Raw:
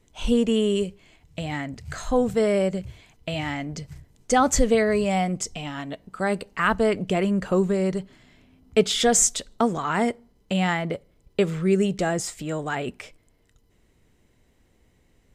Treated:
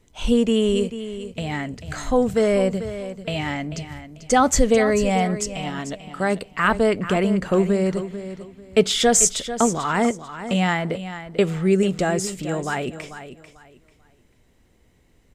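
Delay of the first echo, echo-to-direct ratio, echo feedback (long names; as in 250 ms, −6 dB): 442 ms, −11.5 dB, 25%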